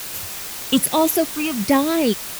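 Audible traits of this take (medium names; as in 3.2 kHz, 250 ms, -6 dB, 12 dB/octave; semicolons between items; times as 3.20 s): phasing stages 8, 1.2 Hz, lowest notch 530–1600 Hz; a quantiser's noise floor 6-bit, dither triangular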